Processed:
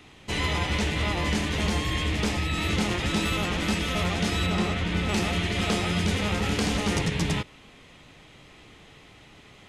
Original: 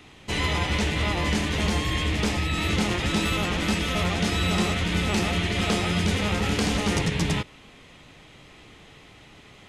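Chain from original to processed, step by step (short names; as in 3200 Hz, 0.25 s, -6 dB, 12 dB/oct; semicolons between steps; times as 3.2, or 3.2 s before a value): 4.46–5.09 high shelf 5300 Hz -10 dB; gain -1.5 dB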